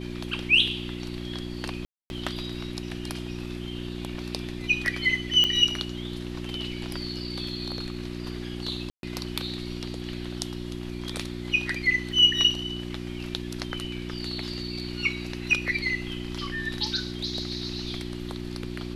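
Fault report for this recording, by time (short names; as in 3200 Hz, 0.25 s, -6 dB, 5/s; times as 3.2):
hum 60 Hz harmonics 6 -35 dBFS
1.85–2.1 gap 0.251 s
5.44 pop -10 dBFS
8.9–9.03 gap 0.132 s
12.12 gap 2.3 ms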